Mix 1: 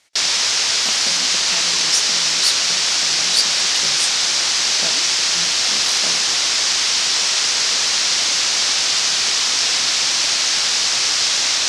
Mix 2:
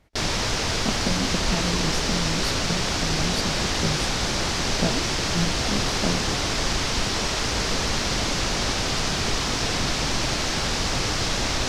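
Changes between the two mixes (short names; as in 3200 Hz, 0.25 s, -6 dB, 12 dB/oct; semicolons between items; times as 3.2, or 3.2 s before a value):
speech: add high shelf 4300 Hz -7.5 dB; master: remove weighting filter ITU-R 468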